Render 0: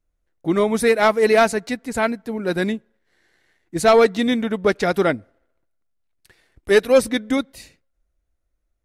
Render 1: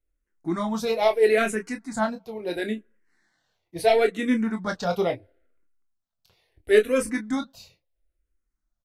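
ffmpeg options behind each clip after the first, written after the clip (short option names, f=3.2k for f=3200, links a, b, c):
-filter_complex "[0:a]flanger=delay=1.8:depth=3.2:regen=69:speed=1.7:shape=triangular,asplit=2[a][b];[b]aecho=0:1:23|33:0.447|0.251[c];[a][c]amix=inputs=2:normalize=0,asplit=2[d][e];[e]afreqshift=-0.74[f];[d][f]amix=inputs=2:normalize=1"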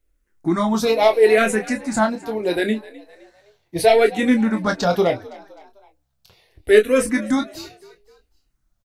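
-filter_complex "[0:a]asplit=2[a][b];[b]acompressor=threshold=-29dB:ratio=6,volume=2dB[c];[a][c]amix=inputs=2:normalize=0,asplit=4[d][e][f][g];[e]adelay=257,afreqshift=66,volume=-20dB[h];[f]adelay=514,afreqshift=132,volume=-27.1dB[i];[g]adelay=771,afreqshift=198,volume=-34.3dB[j];[d][h][i][j]amix=inputs=4:normalize=0,volume=3dB"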